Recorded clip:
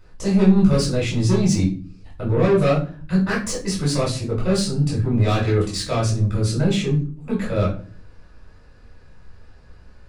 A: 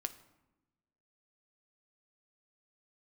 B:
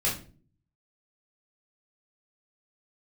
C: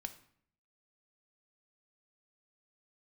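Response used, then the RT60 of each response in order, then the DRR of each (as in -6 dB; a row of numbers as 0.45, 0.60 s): B; 1.0, 0.40, 0.60 s; 9.5, -6.0, 8.0 dB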